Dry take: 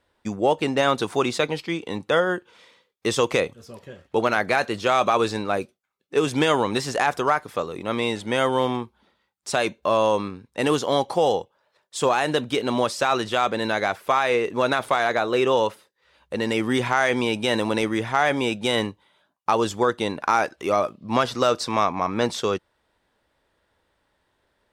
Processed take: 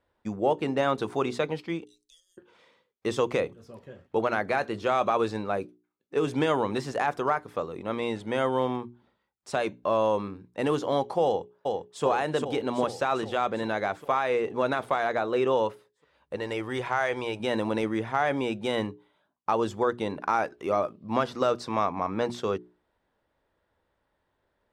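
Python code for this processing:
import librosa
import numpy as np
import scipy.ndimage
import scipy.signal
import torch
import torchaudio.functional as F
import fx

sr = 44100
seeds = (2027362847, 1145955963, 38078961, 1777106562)

y = fx.cheby2_bandstop(x, sr, low_hz=100.0, high_hz=1600.0, order=4, stop_db=60, at=(1.84, 2.37), fade=0.02)
y = fx.echo_throw(y, sr, start_s=11.25, length_s=0.79, ms=400, feedback_pct=65, wet_db=-3.0)
y = fx.peak_eq(y, sr, hz=220.0, db=-12.0, octaves=0.89, at=(16.36, 17.4))
y = fx.high_shelf(y, sr, hz=2300.0, db=-10.5)
y = fx.hum_notches(y, sr, base_hz=60, count=7)
y = y * 10.0 ** (-3.5 / 20.0)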